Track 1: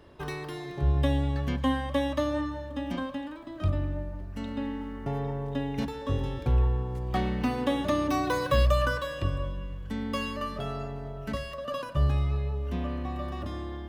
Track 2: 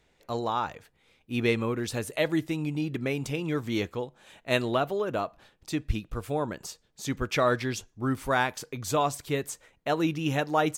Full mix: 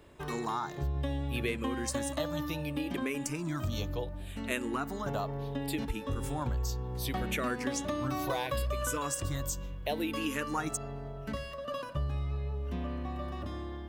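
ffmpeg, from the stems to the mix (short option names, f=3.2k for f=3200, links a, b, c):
-filter_complex "[0:a]volume=-3.5dB[a];[1:a]crystalizer=i=2:c=0,asplit=2[b][c];[c]afreqshift=-0.69[d];[b][d]amix=inputs=2:normalize=1,volume=-1dB[e];[a][e]amix=inputs=2:normalize=0,acompressor=threshold=-30dB:ratio=4"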